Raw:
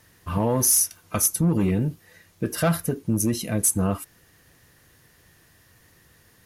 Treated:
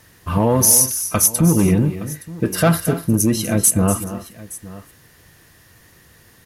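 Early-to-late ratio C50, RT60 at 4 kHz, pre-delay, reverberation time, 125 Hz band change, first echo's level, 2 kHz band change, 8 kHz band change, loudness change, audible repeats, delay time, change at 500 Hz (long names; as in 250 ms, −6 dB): no reverb audible, no reverb audible, no reverb audible, no reverb audible, +7.0 dB, −12.0 dB, +7.0 dB, +7.0 dB, +7.0 dB, 3, 243 ms, +7.0 dB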